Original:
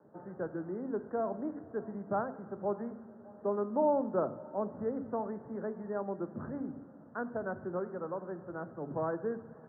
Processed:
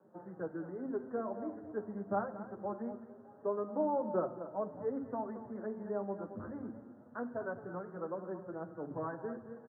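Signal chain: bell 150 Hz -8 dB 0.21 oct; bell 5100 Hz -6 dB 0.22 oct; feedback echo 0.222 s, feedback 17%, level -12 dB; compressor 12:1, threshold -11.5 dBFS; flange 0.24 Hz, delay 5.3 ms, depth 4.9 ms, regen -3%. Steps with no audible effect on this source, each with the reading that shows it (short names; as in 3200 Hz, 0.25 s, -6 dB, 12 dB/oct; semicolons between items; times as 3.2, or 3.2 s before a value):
bell 5100 Hz: input band ends at 1600 Hz; compressor, threshold -11.5 dBFS: input peak -18.5 dBFS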